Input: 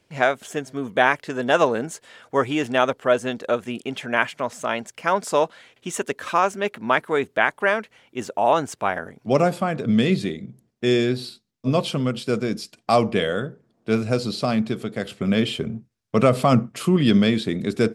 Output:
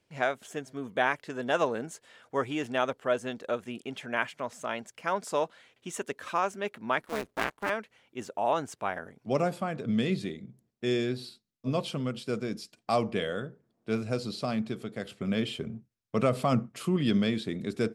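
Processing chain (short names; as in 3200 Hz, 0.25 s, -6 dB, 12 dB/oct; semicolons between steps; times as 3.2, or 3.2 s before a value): 7.02–7.7 cycle switcher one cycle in 2, muted; gain -9 dB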